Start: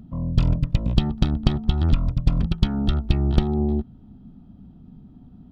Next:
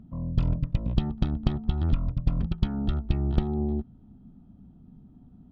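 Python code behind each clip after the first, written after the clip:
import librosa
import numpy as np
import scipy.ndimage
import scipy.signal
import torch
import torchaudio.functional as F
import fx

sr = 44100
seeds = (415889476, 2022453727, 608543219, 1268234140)

y = fx.high_shelf(x, sr, hz=3600.0, db=-11.0)
y = F.gain(torch.from_numpy(y), -5.5).numpy()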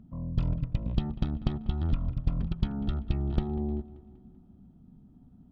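y = fx.echo_wet_lowpass(x, sr, ms=193, feedback_pct=50, hz=3000.0, wet_db=-17.5)
y = F.gain(torch.from_numpy(y), -3.5).numpy()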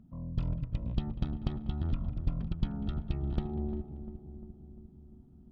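y = fx.echo_filtered(x, sr, ms=349, feedback_pct=65, hz=860.0, wet_db=-10)
y = F.gain(torch.from_numpy(y), -4.5).numpy()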